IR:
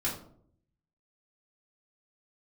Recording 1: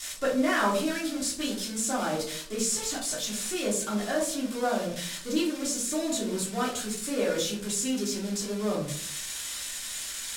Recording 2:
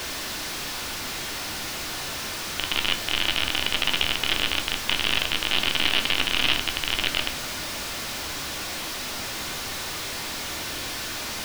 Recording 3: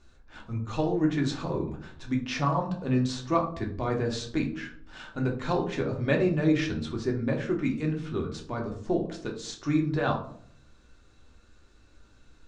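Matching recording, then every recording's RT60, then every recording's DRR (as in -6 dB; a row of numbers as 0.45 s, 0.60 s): 1; 0.60 s, 0.60 s, 0.60 s; -6.5 dB, 5.5 dB, 1.0 dB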